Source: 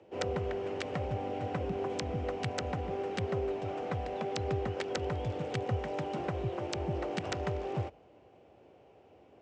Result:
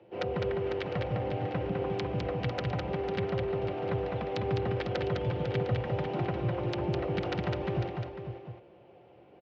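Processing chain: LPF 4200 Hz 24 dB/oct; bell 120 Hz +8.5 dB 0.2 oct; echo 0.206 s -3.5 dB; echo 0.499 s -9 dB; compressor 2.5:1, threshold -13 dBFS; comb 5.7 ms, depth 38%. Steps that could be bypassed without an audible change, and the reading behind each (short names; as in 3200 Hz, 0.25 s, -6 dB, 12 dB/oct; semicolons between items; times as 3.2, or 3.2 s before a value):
compressor, threshold -13 dBFS: input peak -17.5 dBFS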